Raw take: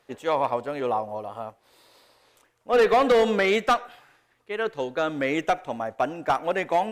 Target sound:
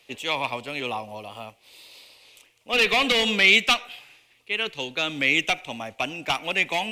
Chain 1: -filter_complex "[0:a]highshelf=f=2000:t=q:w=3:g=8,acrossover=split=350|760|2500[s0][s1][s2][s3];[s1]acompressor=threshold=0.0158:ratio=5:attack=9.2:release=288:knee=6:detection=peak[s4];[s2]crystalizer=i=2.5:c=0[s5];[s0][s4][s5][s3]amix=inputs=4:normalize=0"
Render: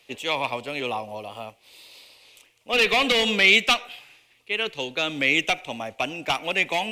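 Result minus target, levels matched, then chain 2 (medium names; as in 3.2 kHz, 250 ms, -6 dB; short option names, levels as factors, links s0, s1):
compression: peak gain reduction -8 dB
-filter_complex "[0:a]highshelf=f=2000:t=q:w=3:g=8,acrossover=split=350|760|2500[s0][s1][s2][s3];[s1]acompressor=threshold=0.00501:ratio=5:attack=9.2:release=288:knee=6:detection=peak[s4];[s2]crystalizer=i=2.5:c=0[s5];[s0][s4][s5][s3]amix=inputs=4:normalize=0"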